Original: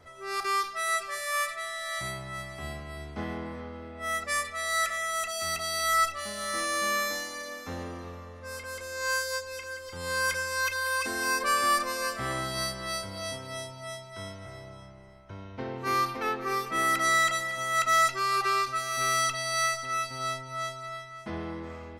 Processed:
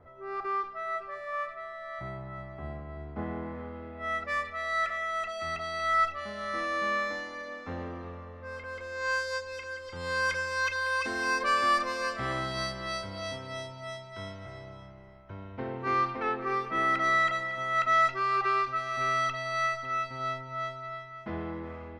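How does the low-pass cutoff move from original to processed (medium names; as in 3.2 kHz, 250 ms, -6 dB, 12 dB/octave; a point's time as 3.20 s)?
3.03 s 1.2 kHz
3.79 s 2.4 kHz
8.67 s 2.4 kHz
9.32 s 4.3 kHz
14.64 s 4.3 kHz
15.42 s 2.5 kHz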